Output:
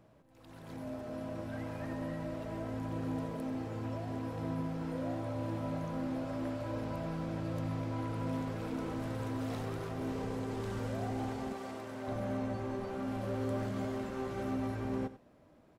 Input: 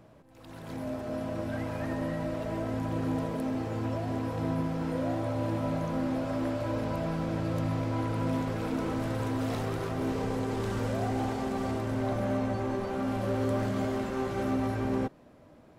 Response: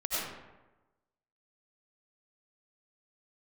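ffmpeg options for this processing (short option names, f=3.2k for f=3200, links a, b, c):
-filter_complex "[0:a]asettb=1/sr,asplit=3[a][b][c];[a]atrim=end=11.534[d];[b]atrim=start=11.53:end=12.08,asetpts=PTS-STARTPTS,afade=t=in:d=0.004:c=qsin,afade=t=out:st=0.546:d=0.004:c=qsin,highpass=f=460:p=1[e];[c]atrim=start=12.076[f];[d][e]acrossfade=d=0.004:c1=hsin:c2=qsin[g];[g][f]acrossfade=d=0.004:c1=qsin:c2=hsin,asplit=2[h][i];[i]aecho=0:1:92:0.188[j];[h][j]amix=inputs=2:normalize=0,volume=-7dB"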